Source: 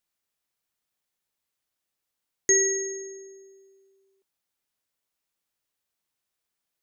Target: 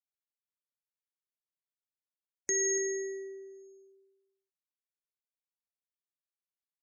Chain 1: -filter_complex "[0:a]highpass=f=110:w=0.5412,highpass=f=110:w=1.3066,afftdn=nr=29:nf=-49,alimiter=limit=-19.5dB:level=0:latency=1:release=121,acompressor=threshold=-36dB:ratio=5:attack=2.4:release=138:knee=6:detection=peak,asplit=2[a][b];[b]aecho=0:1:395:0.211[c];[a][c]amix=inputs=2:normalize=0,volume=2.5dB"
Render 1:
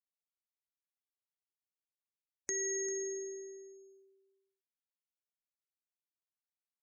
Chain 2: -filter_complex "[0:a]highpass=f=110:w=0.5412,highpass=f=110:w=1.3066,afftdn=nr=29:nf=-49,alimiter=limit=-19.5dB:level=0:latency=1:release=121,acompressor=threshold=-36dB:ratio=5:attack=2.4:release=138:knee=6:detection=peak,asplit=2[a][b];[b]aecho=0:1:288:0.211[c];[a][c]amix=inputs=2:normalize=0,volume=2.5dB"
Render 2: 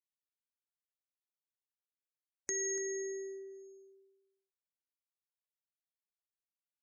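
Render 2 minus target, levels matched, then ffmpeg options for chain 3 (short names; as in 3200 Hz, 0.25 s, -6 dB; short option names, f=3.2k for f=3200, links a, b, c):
compressor: peak gain reduction +6.5 dB
-filter_complex "[0:a]highpass=f=110:w=0.5412,highpass=f=110:w=1.3066,afftdn=nr=29:nf=-49,alimiter=limit=-19.5dB:level=0:latency=1:release=121,acompressor=threshold=-28dB:ratio=5:attack=2.4:release=138:knee=6:detection=peak,asplit=2[a][b];[b]aecho=0:1:288:0.211[c];[a][c]amix=inputs=2:normalize=0,volume=2.5dB"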